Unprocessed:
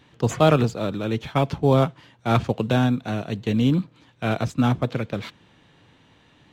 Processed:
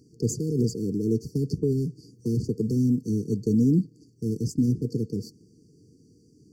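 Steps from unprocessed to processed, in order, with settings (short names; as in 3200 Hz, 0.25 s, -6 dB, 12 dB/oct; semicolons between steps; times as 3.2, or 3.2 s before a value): HPF 130 Hz 6 dB/oct; limiter -17 dBFS, peak gain reduction 11.5 dB; brick-wall FIR band-stop 480–4400 Hz; 1.32–3.46 three-band squash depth 40%; gain +3.5 dB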